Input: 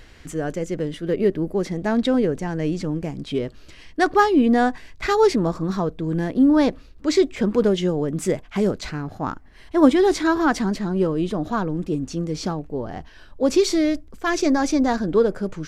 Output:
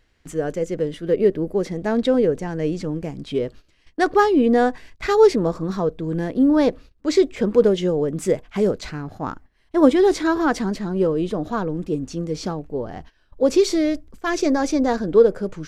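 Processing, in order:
noise gate −39 dBFS, range −15 dB
dynamic equaliser 480 Hz, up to +7 dB, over −34 dBFS, Q 2.7
level −1.5 dB

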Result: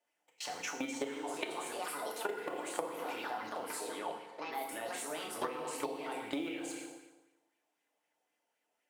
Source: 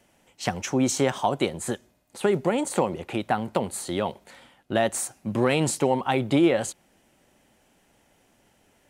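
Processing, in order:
mu-law and A-law mismatch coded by A
0:03.70–0:04.98: low-pass filter 3,400 Hz 6 dB per octave
delay with pitch and tempo change per echo 528 ms, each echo +3 semitones, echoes 3, each echo −6 dB
dynamic equaliser 680 Hz, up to −5 dB, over −35 dBFS, Q 1.1
output level in coarse steps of 22 dB
high-pass filter 420 Hz 12 dB per octave
feedback delay network reverb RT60 1.1 s, low-frequency decay 0.9×, high-frequency decay 0.8×, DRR −0.5 dB
downward compressor 6 to 1, threshold −38 dBFS, peak gain reduction 16.5 dB
auto-filter bell 3.9 Hz 640–2,500 Hz +7 dB
level +1.5 dB

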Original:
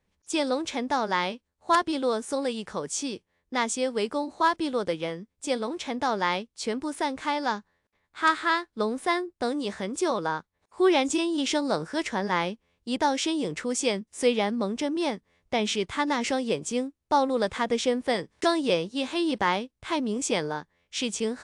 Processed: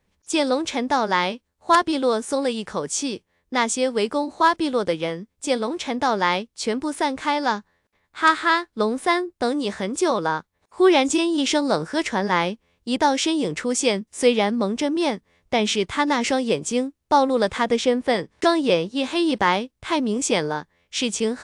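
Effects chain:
0:17.76–0:19.04: high-shelf EQ 5,200 Hz −5.5 dB
level +5.5 dB

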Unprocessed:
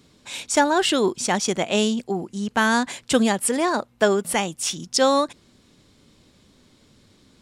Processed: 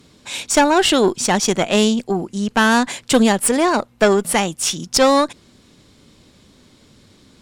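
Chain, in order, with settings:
harmonic generator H 4 −16 dB, 5 −21 dB, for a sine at −4 dBFS
level +2.5 dB

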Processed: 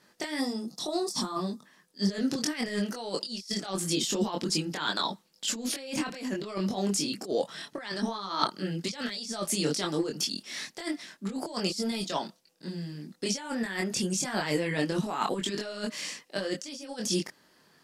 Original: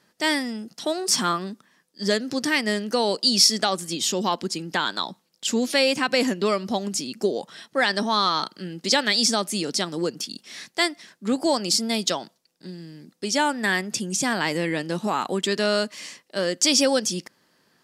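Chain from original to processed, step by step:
compressor whose output falls as the input rises −27 dBFS, ratio −0.5
multi-voice chorus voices 6, 0.99 Hz, delay 23 ms, depth 3.6 ms
gain on a spectral selection 0:00.40–0:01.66, 1,300–3,400 Hz −12 dB

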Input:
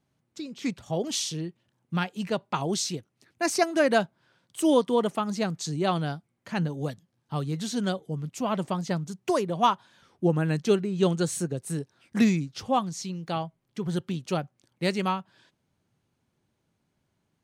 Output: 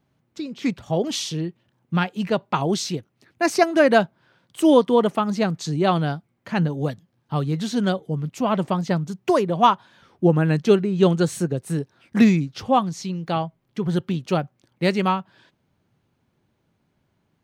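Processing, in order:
parametric band 8,500 Hz −8.5 dB 1.6 octaves
level +6.5 dB

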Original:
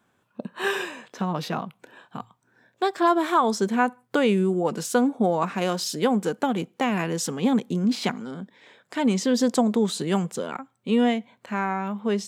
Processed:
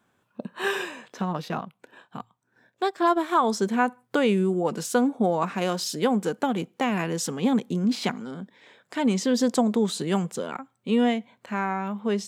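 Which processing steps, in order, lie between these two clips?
0:01.23–0:03.35: transient designer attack −1 dB, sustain −7 dB
level −1 dB

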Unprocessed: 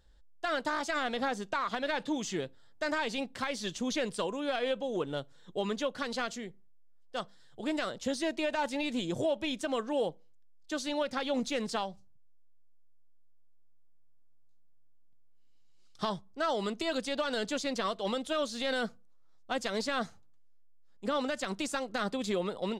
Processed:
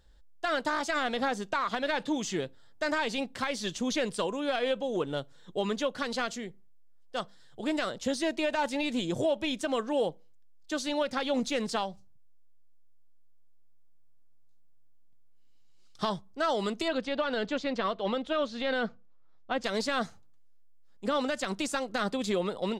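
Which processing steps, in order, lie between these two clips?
0:16.88–0:19.64: low-pass filter 3,200 Hz 12 dB per octave
level +2.5 dB

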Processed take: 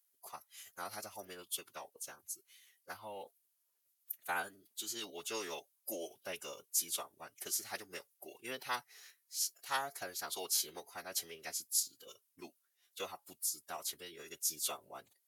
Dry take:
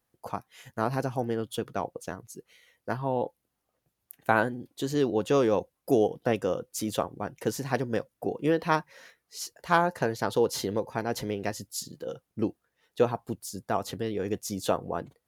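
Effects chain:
first difference
phase-vocoder pitch shift with formants kept −4 semitones
level +3.5 dB

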